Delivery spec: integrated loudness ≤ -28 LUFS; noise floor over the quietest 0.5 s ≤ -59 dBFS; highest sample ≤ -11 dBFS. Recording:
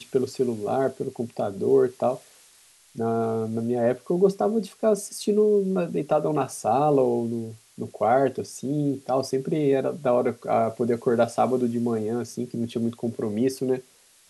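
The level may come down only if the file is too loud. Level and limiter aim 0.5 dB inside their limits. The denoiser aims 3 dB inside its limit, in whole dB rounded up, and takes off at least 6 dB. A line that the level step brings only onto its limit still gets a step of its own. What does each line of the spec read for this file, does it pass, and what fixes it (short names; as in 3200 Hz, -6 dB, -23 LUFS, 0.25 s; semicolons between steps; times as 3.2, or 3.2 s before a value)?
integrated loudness -25.0 LUFS: fail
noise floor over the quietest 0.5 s -56 dBFS: fail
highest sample -9.0 dBFS: fail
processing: gain -3.5 dB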